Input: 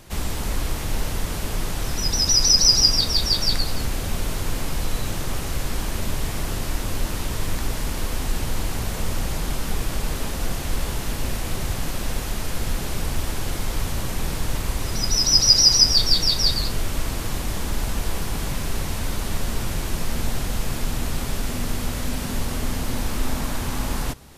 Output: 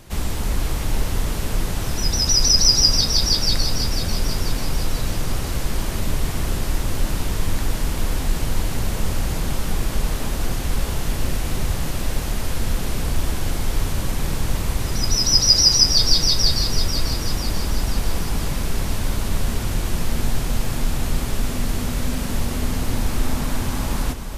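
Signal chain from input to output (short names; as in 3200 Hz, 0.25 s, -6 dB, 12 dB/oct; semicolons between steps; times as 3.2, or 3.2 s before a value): low shelf 350 Hz +3 dB; split-band echo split 520 Hz, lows 0.268 s, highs 0.492 s, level -9 dB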